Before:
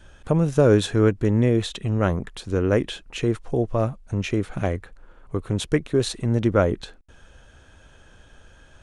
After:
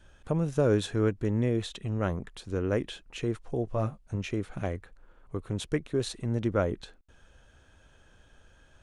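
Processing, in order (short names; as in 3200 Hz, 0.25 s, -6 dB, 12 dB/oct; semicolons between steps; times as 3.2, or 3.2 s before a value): 3.65–4.16 doubler 19 ms -6.5 dB; gain -8 dB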